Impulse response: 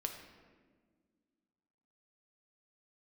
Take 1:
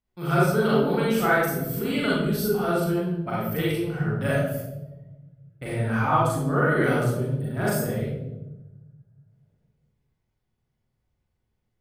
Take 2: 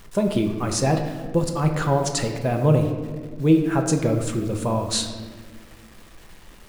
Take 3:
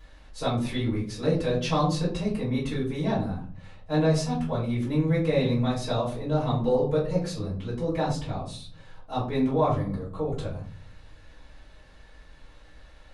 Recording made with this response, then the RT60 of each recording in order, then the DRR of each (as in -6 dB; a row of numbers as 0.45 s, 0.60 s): 2; 1.0 s, 1.6 s, 0.50 s; -7.5 dB, 3.5 dB, -9.0 dB